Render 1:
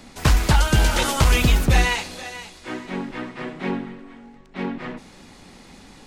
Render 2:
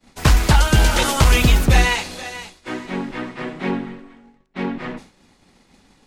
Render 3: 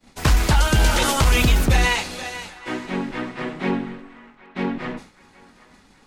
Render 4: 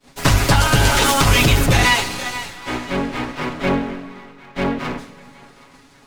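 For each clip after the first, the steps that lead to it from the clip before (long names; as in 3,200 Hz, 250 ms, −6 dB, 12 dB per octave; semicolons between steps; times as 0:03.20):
downward expander −36 dBFS; level +3 dB
brickwall limiter −7.5 dBFS, peak gain reduction 6 dB; feedback echo with a band-pass in the loop 773 ms, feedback 59%, band-pass 1,400 Hz, level −19.5 dB
lower of the sound and its delayed copy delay 7.2 ms; on a send at −15 dB: convolution reverb RT60 2.2 s, pre-delay 30 ms; on the sum: level +5.5 dB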